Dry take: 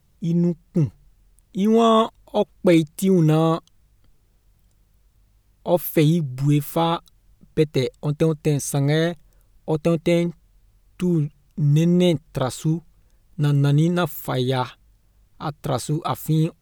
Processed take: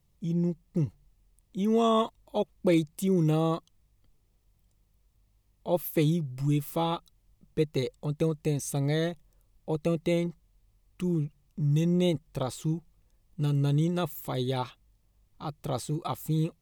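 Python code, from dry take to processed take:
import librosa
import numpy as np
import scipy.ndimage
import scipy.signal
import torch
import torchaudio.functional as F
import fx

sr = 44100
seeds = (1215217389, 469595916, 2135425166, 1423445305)

y = fx.peak_eq(x, sr, hz=1500.0, db=-9.5, octaves=0.23)
y = F.gain(torch.from_numpy(y), -8.0).numpy()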